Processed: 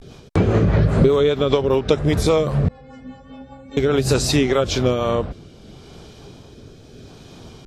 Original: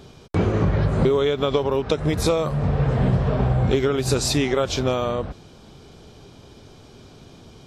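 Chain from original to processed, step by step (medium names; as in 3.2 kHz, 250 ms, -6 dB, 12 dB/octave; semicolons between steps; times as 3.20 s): 2.67–3.77 s: inharmonic resonator 260 Hz, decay 0.62 s, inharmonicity 0.008; vibrato 0.33 Hz 53 cents; rotary cabinet horn 5 Hz, later 0.75 Hz, at 4.49 s; trim +5.5 dB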